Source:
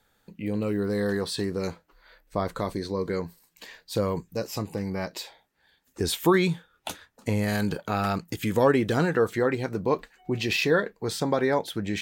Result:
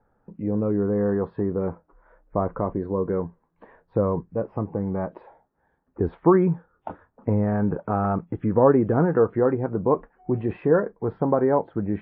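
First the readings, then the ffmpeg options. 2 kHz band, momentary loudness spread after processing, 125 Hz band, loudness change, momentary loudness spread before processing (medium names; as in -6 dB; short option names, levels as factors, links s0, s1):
-8.5 dB, 11 LU, +4.0 dB, +3.0 dB, 13 LU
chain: -af "lowpass=f=1200:w=0.5412,lowpass=f=1200:w=1.3066,volume=1.58" -ar 48000 -c:a wmav2 -b:a 64k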